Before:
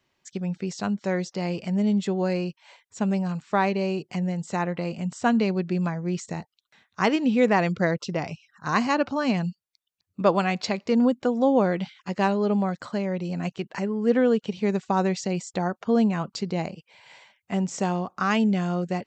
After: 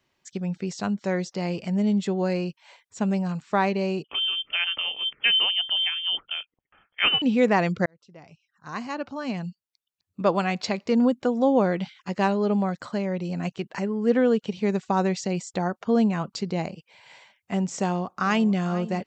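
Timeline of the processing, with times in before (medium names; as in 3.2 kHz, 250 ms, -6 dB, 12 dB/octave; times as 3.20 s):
4.04–7.22 s: frequency inversion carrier 3.3 kHz
7.86–10.78 s: fade in
17.79–18.57 s: echo throw 450 ms, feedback 40%, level -16 dB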